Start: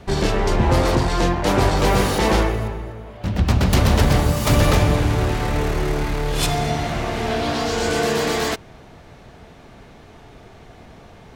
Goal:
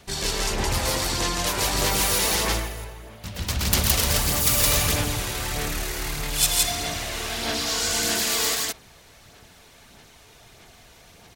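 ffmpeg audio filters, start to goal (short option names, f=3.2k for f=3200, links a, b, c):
-af "aecho=1:1:107.9|166.2:0.316|0.891,aphaser=in_gain=1:out_gain=1:delay=2.1:decay=0.29:speed=1.6:type=sinusoidal,crystalizer=i=9.5:c=0,volume=-15dB"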